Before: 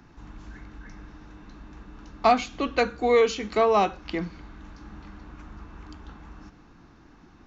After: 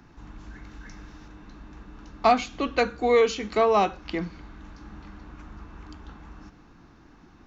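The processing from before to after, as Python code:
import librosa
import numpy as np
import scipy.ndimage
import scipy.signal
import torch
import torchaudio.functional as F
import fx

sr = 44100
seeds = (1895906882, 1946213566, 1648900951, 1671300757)

y = fx.high_shelf(x, sr, hz=3700.0, db=9.5, at=(0.64, 1.28))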